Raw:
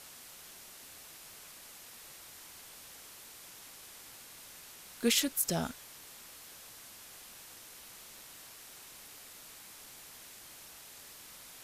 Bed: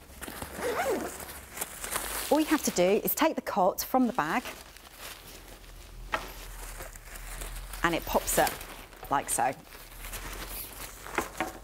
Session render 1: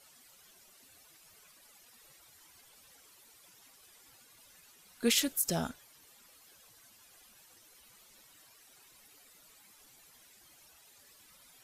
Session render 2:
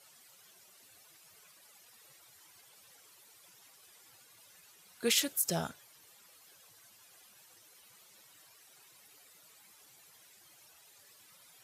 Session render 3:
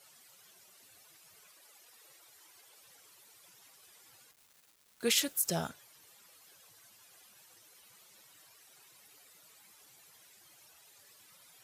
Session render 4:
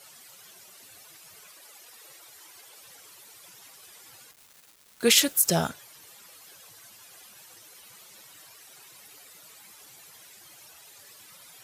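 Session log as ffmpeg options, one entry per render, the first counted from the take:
ffmpeg -i in.wav -af "afftdn=noise_reduction=13:noise_floor=-52" out.wav
ffmpeg -i in.wav -af "highpass=frequency=89:width=0.5412,highpass=frequency=89:width=1.3066,equalizer=frequency=250:width_type=o:width=0.4:gain=-8.5" out.wav
ffmpeg -i in.wav -filter_complex "[0:a]asettb=1/sr,asplit=3[link_01][link_02][link_03];[link_01]atrim=end=1.474[link_04];[link_02]atrim=start=1.47:end=2.86,asetpts=PTS-STARTPTS,afade=type=in:duration=0.004:curve=qsin,afade=type=out:start_time=1.386:duration=0.004:curve=qsin,lowshelf=frequency=260:width_type=q:width=1.5:gain=-6.5[link_05];[link_03]atrim=start=2.856[link_06];[link_04][link_05]acrossfade=duration=0.004:curve1=hsin:curve2=qsin[link_07];[link_07][link_06]acrossfade=duration=0.004:curve1=qsin:curve2=hsin,asettb=1/sr,asplit=3[link_08][link_09][link_10];[link_08]atrim=end=4.314[link_11];[link_09]atrim=start=4.31:end=5.68,asetpts=PTS-STARTPTS,afade=type=in:duration=0.004:curve=qsin,afade=type=out:start_time=1.366:duration=0.004:curve=qsin,aeval=exprs='val(0)*gte(abs(val(0)),0.002)':channel_layout=same[link_12];[link_10]atrim=start=5.676[link_13];[link_11][link_12]acrossfade=duration=0.004:curve1=hsin:curve2=qsin[link_14];[link_14][link_13]acrossfade=duration=0.004:curve1=qsin:curve2=hsin" out.wav
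ffmpeg -i in.wav -af "volume=9.5dB" out.wav

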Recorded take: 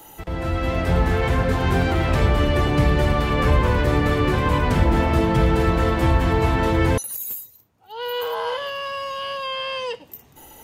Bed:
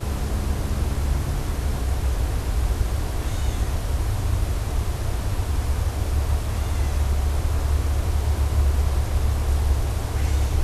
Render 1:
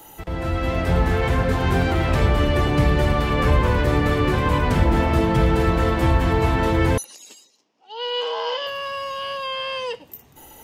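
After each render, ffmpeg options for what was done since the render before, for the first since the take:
ffmpeg -i in.wav -filter_complex "[0:a]asettb=1/sr,asplit=3[link_01][link_02][link_03];[link_01]atrim=end=7.044[link_04];[link_02]atrim=start=7.04:end=8.67,asetpts=PTS-STARTPTS,afade=type=in:duration=0.004:curve=qsin,afade=type=out:start_time=1.626:duration=0.004:curve=qsin,highpass=frequency=240:width=0.5412,highpass=frequency=240:width=1.3066,equalizer=frequency=1400:width_type=q:width=4:gain=-6,equalizer=frequency=2900:width_type=q:width=4:gain=6,equalizer=frequency=5200:width_type=q:width=4:gain=9,lowpass=frequency=6800:width=0.5412,lowpass=frequency=6800:width=1.3066[link_05];[link_03]atrim=start=8.666[link_06];[link_04][link_05]acrossfade=duration=0.004:curve1=hsin:curve2=qsin[link_07];[link_07][link_06]acrossfade=duration=0.004:curve1=qsin:curve2=hsin" out.wav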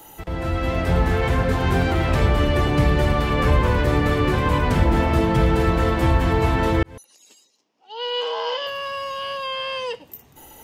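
ffmpeg -i in.wav -filter_complex "[0:a]asplit=2[link_01][link_02];[link_01]atrim=end=6.83,asetpts=PTS-STARTPTS,afade=type=out:start_time=6.826:duration=0.004:curve=hsin[link_03];[link_02]atrim=start=6.83,asetpts=PTS-STARTPTS,afade=type=in:duration=1.12[link_04];[link_03][link_04]concat=n=2:v=0:a=1" out.wav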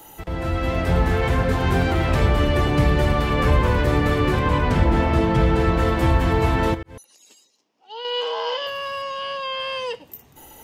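ffmpeg -i in.wav -filter_complex "[0:a]asettb=1/sr,asplit=3[link_01][link_02][link_03];[link_01]atrim=end=4.394[link_04];[link_02]atrim=start=4.39:end=5.79,asetpts=PTS-STARTPTS,afade=type=in:duration=0.004:curve=qsin,afade=type=out:start_time=1.396:duration=0.004:curve=qsin,highshelf=frequency=10000:gain=-12[link_05];[link_03]atrim=start=5.786[link_06];[link_04][link_05]acrossfade=duration=0.004:curve1=hsin:curve2=qsin[link_07];[link_07][link_06]acrossfade=duration=0.004:curve1=qsin:curve2=hsin,asettb=1/sr,asplit=3[link_08][link_09][link_10];[link_08]atrim=end=6.744[link_11];[link_09]atrim=start=6.74:end=8.05,asetpts=PTS-STARTPTS,afade=type=in:duration=0.004:curve=qsin,afade=type=out:start_time=1.306:duration=0.004:curve=qsin,acompressor=threshold=-29dB:ratio=5:attack=3.2:release=140:knee=1:detection=peak[link_12];[link_10]atrim=start=8.046[link_13];[link_11][link_12]acrossfade=duration=0.004:curve1=hsin:curve2=qsin[link_14];[link_14][link_13]acrossfade=duration=0.004:curve1=qsin:curve2=hsin,asettb=1/sr,asplit=3[link_15][link_16][link_17];[link_15]atrim=end=9.024[link_18];[link_16]atrim=start=9.02:end=9.6,asetpts=PTS-STARTPTS,afade=type=in:duration=0.004:curve=qsin,afade=type=out:start_time=0.576:duration=0.004:curve=qsin,highpass=120,lowpass=7100[link_19];[link_17]atrim=start=9.596[link_20];[link_18][link_19]acrossfade=duration=0.004:curve1=hsin:curve2=qsin[link_21];[link_21][link_20]acrossfade=duration=0.004:curve1=qsin:curve2=hsin" out.wav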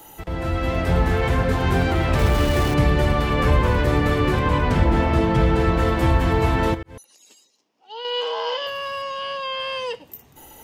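ffmpeg -i in.wav -filter_complex "[0:a]asplit=3[link_01][link_02][link_03];[link_01]afade=type=out:start_time=2.18:duration=0.02[link_04];[link_02]aeval=exprs='val(0)*gte(abs(val(0)),0.0562)':channel_layout=same,afade=type=in:start_time=2.18:duration=0.02,afade=type=out:start_time=2.73:duration=0.02[link_05];[link_03]afade=type=in:start_time=2.73:duration=0.02[link_06];[link_04][link_05][link_06]amix=inputs=3:normalize=0" out.wav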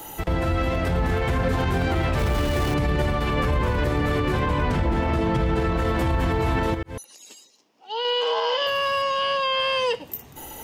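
ffmpeg -i in.wav -filter_complex "[0:a]asplit=2[link_01][link_02];[link_02]acompressor=threshold=-27dB:ratio=6,volume=0.5dB[link_03];[link_01][link_03]amix=inputs=2:normalize=0,alimiter=limit=-14.5dB:level=0:latency=1:release=60" out.wav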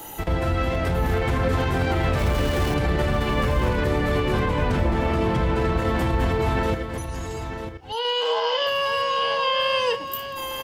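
ffmpeg -i in.wav -filter_complex "[0:a]asplit=2[link_01][link_02];[link_02]adelay=32,volume=-12dB[link_03];[link_01][link_03]amix=inputs=2:normalize=0,aecho=1:1:945:0.355" out.wav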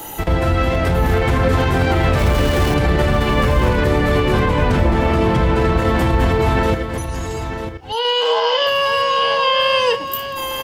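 ffmpeg -i in.wav -af "volume=6.5dB" out.wav

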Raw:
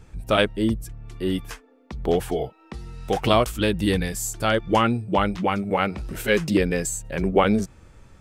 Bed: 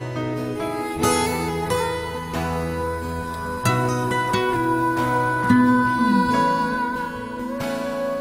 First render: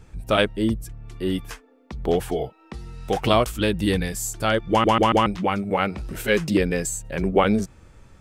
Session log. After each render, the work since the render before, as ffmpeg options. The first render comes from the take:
ffmpeg -i in.wav -filter_complex "[0:a]asplit=5[link_01][link_02][link_03][link_04][link_05];[link_01]atrim=end=4.842[link_06];[link_02]atrim=start=4.698:end=4.842[link_07];[link_03]atrim=start=4.698:end=4.842[link_08];[link_04]atrim=start=4.698:end=4.842[link_09];[link_05]atrim=start=5.258[link_10];[link_06][link_07]acrossfade=duration=0.004:curve1=hsin:curve2=hsin[link_11];[link_11][link_08]acrossfade=duration=0.004:curve1=hsin:curve2=hsin[link_12];[link_12][link_09]acrossfade=duration=0.004:curve1=hsin:curve2=hsin[link_13];[link_13][link_10]acrossfade=duration=0.004:curve1=hsin:curve2=hsin" out.wav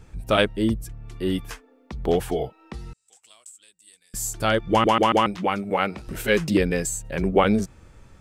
ffmpeg -i in.wav -filter_complex "[0:a]asettb=1/sr,asplit=3[link_01][link_02][link_03];[link_01]atrim=end=2.934[link_04];[link_02]atrim=start=2.93:end=4.14,asetpts=PTS-STARTPTS,afade=type=in:duration=0.004:curve=qsin,afade=type=out:start_time=1.206:duration=0.004:curve=qsin,bandpass=frequency=7800:width_type=q:width=9.6[link_05];[link_03]atrim=start=4.136[link_06];[link_04][link_05]acrossfade=duration=0.004:curve1=hsin:curve2=qsin[link_07];[link_07][link_06]acrossfade=duration=0.004:curve1=qsin:curve2=hsin,asettb=1/sr,asplit=3[link_08][link_09][link_10];[link_08]atrim=end=4.874[link_11];[link_09]atrim=start=4.87:end=6.08,asetpts=PTS-STARTPTS,afade=type=in:duration=0.004:curve=qsin,afade=type=out:start_time=1.206:duration=0.004:curve=qsin,highpass=frequency=200:poles=1[link_12];[link_10]atrim=start=6.076[link_13];[link_11][link_12]acrossfade=duration=0.004:curve1=hsin:curve2=qsin[link_14];[link_14][link_13]acrossfade=duration=0.004:curve1=qsin:curve2=hsin" out.wav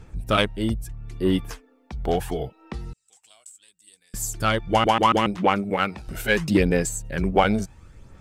ffmpeg -i in.wav -af "aphaser=in_gain=1:out_gain=1:delay=1.4:decay=0.41:speed=0.73:type=sinusoidal,aeval=exprs='0.668*(cos(1*acos(clip(val(0)/0.668,-1,1)))-cos(1*PI/2))+0.0168*(cos(7*acos(clip(val(0)/0.668,-1,1)))-cos(7*PI/2))':channel_layout=same" out.wav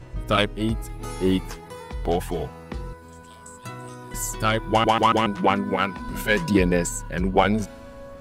ffmpeg -i in.wav -i bed.wav -filter_complex "[1:a]volume=-17dB[link_01];[0:a][link_01]amix=inputs=2:normalize=0" out.wav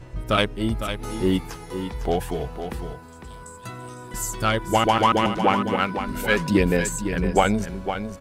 ffmpeg -i in.wav -af "aecho=1:1:505:0.355" out.wav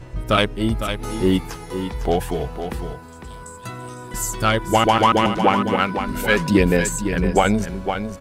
ffmpeg -i in.wav -af "volume=3.5dB,alimiter=limit=-3dB:level=0:latency=1" out.wav

